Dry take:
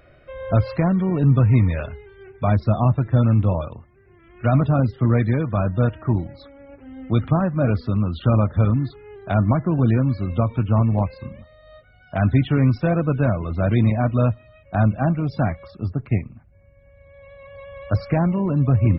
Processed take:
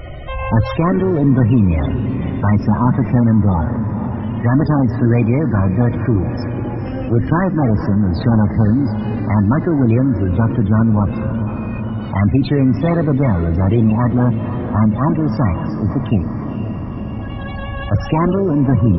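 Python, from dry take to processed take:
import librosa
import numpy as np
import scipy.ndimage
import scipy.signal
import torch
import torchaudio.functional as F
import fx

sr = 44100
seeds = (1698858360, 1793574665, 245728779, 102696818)

p1 = fx.low_shelf(x, sr, hz=130.0, db=10.0)
p2 = fx.formant_shift(p1, sr, semitones=5)
p3 = fx.spec_topn(p2, sr, count=64)
p4 = p3 + fx.echo_diffused(p3, sr, ms=501, feedback_pct=57, wet_db=-15.0, dry=0)
p5 = fx.env_flatten(p4, sr, amount_pct=50)
y = p5 * librosa.db_to_amplitude(-2.5)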